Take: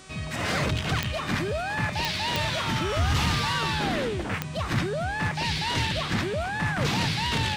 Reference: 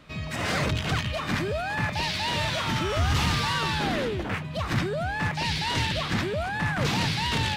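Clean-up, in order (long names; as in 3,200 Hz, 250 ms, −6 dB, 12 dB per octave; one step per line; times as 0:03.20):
click removal
hum removal 379.4 Hz, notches 25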